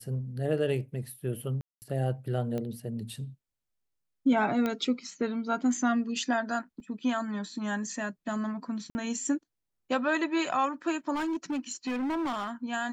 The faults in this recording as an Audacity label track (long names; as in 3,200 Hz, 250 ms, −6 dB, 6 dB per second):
1.610000	1.820000	drop-out 209 ms
2.580000	2.580000	click −22 dBFS
4.660000	4.660000	click −17 dBFS
6.800000	6.800000	drop-out 2.2 ms
8.900000	8.950000	drop-out 50 ms
11.140000	12.510000	clipping −28 dBFS